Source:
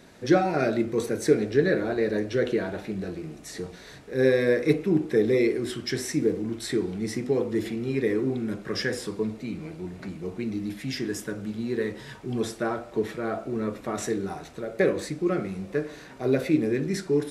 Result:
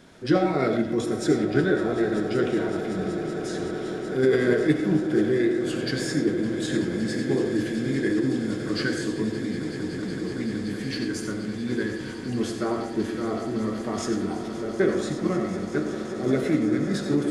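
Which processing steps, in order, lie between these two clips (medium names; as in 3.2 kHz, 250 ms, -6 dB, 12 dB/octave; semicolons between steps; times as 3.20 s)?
echo with a slow build-up 188 ms, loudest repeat 8, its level -16.5 dB; algorithmic reverb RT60 0.56 s, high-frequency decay 0.5×, pre-delay 45 ms, DRR 6 dB; formant shift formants -2 st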